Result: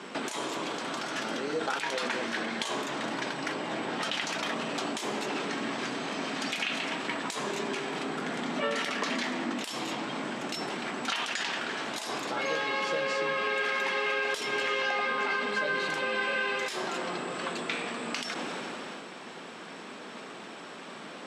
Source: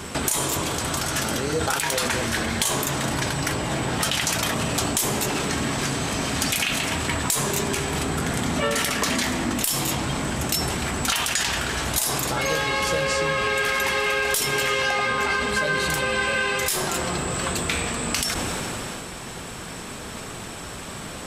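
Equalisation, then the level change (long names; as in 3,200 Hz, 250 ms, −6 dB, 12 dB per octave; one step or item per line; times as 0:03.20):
high-pass filter 210 Hz 24 dB per octave
low-pass filter 4,100 Hz 12 dB per octave
−6.0 dB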